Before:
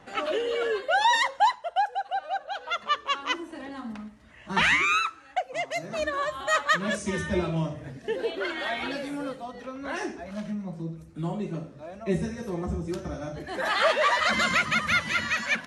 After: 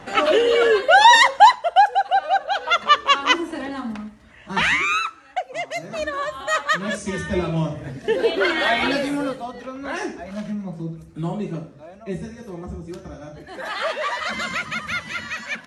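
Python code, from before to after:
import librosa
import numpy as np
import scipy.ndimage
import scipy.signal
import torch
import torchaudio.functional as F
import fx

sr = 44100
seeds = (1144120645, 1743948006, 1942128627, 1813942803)

y = fx.gain(x, sr, db=fx.line((3.47, 11.0), (4.52, 2.5), (7.18, 2.5), (8.42, 11.0), (8.97, 11.0), (9.66, 4.5), (11.52, 4.5), (12.02, -2.5)))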